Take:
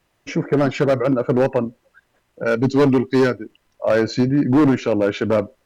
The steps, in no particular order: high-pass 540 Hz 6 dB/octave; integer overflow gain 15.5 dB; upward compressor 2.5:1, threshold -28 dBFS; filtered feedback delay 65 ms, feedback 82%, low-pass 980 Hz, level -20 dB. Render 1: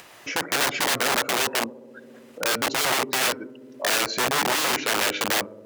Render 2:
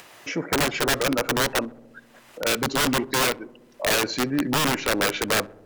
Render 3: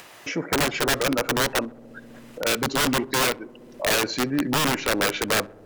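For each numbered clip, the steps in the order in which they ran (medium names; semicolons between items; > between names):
filtered feedback delay > upward compressor > integer overflow > high-pass; upward compressor > high-pass > integer overflow > filtered feedback delay; high-pass > integer overflow > filtered feedback delay > upward compressor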